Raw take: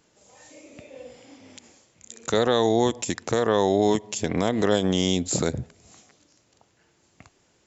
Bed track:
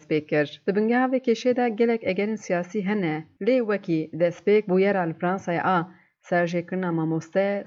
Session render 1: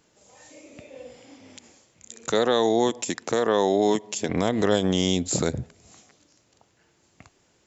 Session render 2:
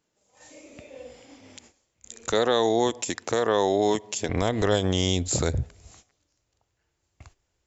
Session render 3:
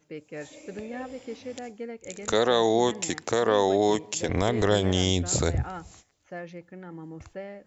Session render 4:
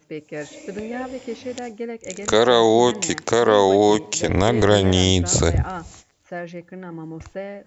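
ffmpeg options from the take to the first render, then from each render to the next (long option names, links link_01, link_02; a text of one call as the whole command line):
ffmpeg -i in.wav -filter_complex "[0:a]asettb=1/sr,asplit=3[link_01][link_02][link_03];[link_01]atrim=end=2.324[link_04];[link_02]atrim=start=2.32:end=4.29,asetpts=PTS-STARTPTS,afade=type=in:duration=0.004:curve=qsin,afade=type=out:start_time=1.966:duration=0.004:curve=qsin,highpass=180[link_05];[link_03]atrim=start=4.286[link_06];[link_04][link_05]acrossfade=duration=0.004:curve1=hsin:curve2=qsin[link_07];[link_07][link_06]acrossfade=duration=0.004:curve1=qsin:curve2=hsin" out.wav
ffmpeg -i in.wav -af "asubboost=boost=10:cutoff=62,agate=range=-13dB:threshold=-51dB:ratio=16:detection=peak" out.wav
ffmpeg -i in.wav -i bed.wav -filter_complex "[1:a]volume=-16dB[link_01];[0:a][link_01]amix=inputs=2:normalize=0" out.wav
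ffmpeg -i in.wav -af "volume=7dB" out.wav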